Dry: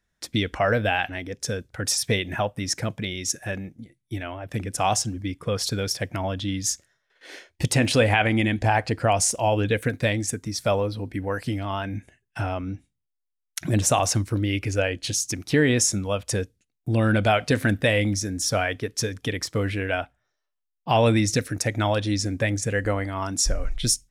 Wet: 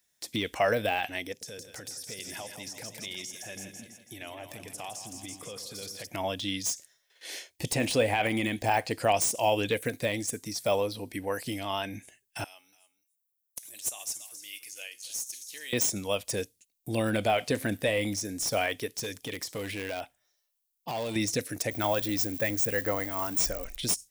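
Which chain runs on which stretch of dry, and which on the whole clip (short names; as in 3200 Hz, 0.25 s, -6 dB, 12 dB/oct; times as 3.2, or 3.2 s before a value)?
1.32–6.07 compressor 10:1, threshold -34 dBFS + split-band echo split 510 Hz, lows 92 ms, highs 0.164 s, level -8 dB
12.44–15.73 differentiator + resonator 120 Hz, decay 0.41 s, mix 50% + echo 0.284 s -14.5 dB
18.97–21.16 compressor 3:1, threshold -25 dBFS + hard clip -24 dBFS
21.71–23.77 switching spikes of -27.5 dBFS + dynamic EQ 1500 Hz, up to +6 dB, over -39 dBFS, Q 1.1
whole clip: RIAA curve recording; de-esser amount 80%; bell 1400 Hz -8 dB 0.73 oct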